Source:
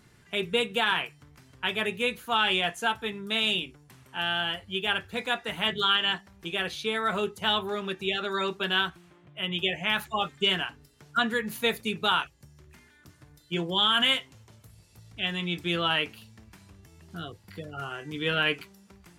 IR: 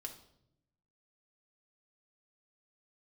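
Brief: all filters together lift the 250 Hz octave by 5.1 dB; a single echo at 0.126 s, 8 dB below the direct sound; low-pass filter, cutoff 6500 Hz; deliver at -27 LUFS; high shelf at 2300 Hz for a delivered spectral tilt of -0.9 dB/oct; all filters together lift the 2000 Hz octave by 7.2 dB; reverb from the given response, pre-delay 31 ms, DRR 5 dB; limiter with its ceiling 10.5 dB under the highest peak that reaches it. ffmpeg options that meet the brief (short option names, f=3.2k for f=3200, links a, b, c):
-filter_complex "[0:a]lowpass=6.5k,equalizer=f=250:t=o:g=7,equalizer=f=2k:t=o:g=6,highshelf=f=2.3k:g=6.5,alimiter=limit=-15.5dB:level=0:latency=1,aecho=1:1:126:0.398,asplit=2[a][b];[1:a]atrim=start_sample=2205,adelay=31[c];[b][c]afir=irnorm=-1:irlink=0,volume=-1.5dB[d];[a][d]amix=inputs=2:normalize=0,volume=-2dB"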